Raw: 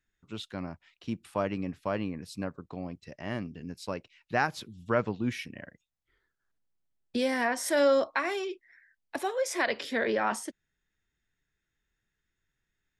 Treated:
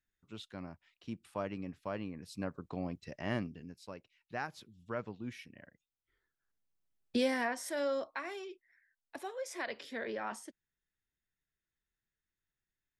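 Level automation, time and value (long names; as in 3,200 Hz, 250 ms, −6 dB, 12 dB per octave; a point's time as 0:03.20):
0:02.12 −8 dB
0:02.68 −0.5 dB
0:03.38 −0.5 dB
0:03.80 −12 dB
0:05.46 −12 dB
0:07.16 −1 dB
0:07.74 −11 dB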